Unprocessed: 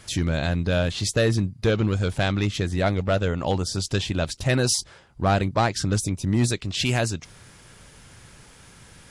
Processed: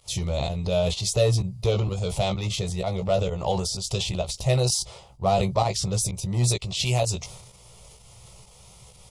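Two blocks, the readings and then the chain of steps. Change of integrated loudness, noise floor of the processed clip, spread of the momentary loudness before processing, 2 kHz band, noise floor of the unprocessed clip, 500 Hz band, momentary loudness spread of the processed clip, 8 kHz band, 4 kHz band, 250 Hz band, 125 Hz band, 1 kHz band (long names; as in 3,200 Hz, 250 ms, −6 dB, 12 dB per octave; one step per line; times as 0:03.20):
−1.5 dB, −51 dBFS, 4 LU, −9.0 dB, −50 dBFS, +0.5 dB, 6 LU, +1.5 dB, 0.0 dB, −6.0 dB, −1.0 dB, −0.5 dB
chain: phaser with its sweep stopped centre 670 Hz, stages 4
fake sidechain pumping 128 BPM, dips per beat 1, −21 dB, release 129 ms
double-tracking delay 16 ms −5.5 dB
transient designer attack +1 dB, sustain +8 dB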